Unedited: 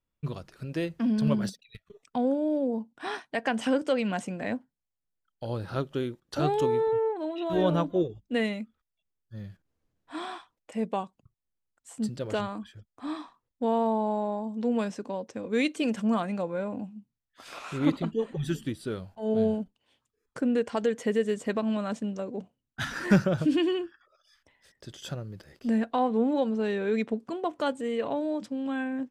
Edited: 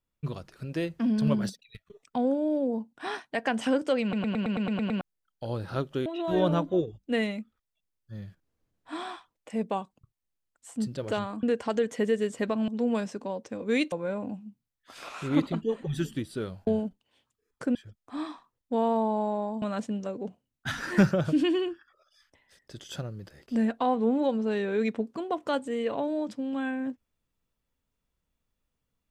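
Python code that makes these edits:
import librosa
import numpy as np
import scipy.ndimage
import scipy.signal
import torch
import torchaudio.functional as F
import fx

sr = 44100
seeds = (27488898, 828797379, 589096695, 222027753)

y = fx.edit(x, sr, fx.stutter_over(start_s=4.02, slice_s=0.11, count=9),
    fx.cut(start_s=6.06, length_s=1.22),
    fx.swap(start_s=12.65, length_s=1.87, other_s=20.5, other_length_s=1.25),
    fx.cut(start_s=15.76, length_s=0.66),
    fx.cut(start_s=19.17, length_s=0.25), tone=tone)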